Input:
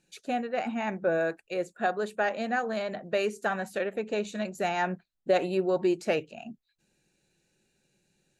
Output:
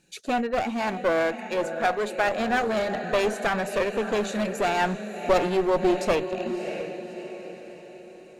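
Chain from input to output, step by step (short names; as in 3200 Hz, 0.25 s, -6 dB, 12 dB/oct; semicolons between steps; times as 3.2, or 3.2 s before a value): diffused feedback echo 0.628 s, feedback 46%, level -11 dB; one-sided clip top -32 dBFS; 0.63–2.27 low shelf 200 Hz -7.5 dB; gain +7 dB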